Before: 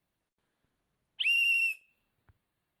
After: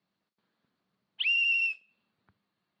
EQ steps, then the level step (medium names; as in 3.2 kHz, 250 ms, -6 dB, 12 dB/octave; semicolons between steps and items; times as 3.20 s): cabinet simulation 150–5500 Hz, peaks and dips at 200 Hz +9 dB, 1.2 kHz +4 dB, 4.4 kHz +7 dB; 0.0 dB